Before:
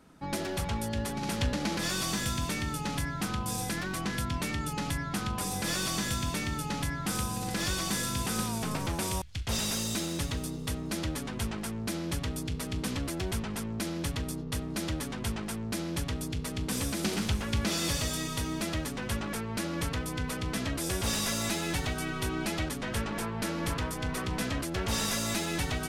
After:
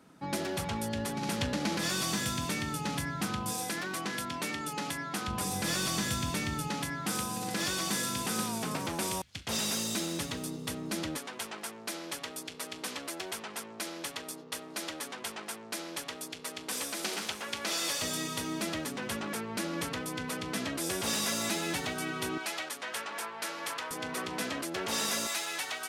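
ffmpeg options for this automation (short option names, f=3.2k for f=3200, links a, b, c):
-af "asetnsamples=n=441:p=0,asendcmd='3.52 highpass f 260;5.28 highpass f 83;6.68 highpass f 180;11.17 highpass f 490;18.02 highpass f 200;22.38 highpass f 680;23.91 highpass f 280;25.27 highpass f 770',highpass=120"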